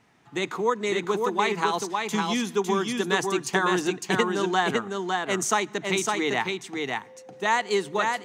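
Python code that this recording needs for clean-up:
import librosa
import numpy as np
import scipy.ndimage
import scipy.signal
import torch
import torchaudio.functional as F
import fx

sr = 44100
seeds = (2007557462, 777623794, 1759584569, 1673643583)

y = fx.fix_declip(x, sr, threshold_db=-10.0)
y = fx.notch(y, sr, hz=520.0, q=30.0)
y = fx.fix_echo_inverse(y, sr, delay_ms=556, level_db=-3.5)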